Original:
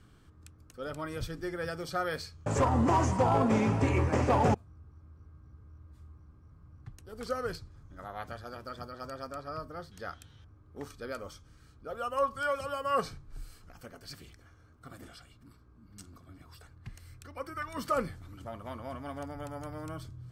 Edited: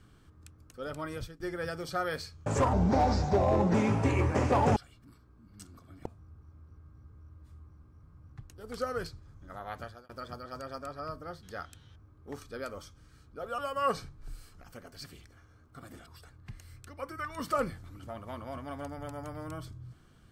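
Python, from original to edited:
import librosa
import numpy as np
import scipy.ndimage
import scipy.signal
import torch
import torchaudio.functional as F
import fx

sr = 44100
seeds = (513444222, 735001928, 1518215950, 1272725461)

y = fx.edit(x, sr, fx.fade_out_to(start_s=1.13, length_s=0.27, floor_db=-22.5),
    fx.speed_span(start_s=2.73, length_s=0.79, speed=0.78),
    fx.fade_out_span(start_s=8.32, length_s=0.26),
    fx.cut(start_s=12.07, length_s=0.6),
    fx.move(start_s=15.15, length_s=1.29, to_s=4.54), tone=tone)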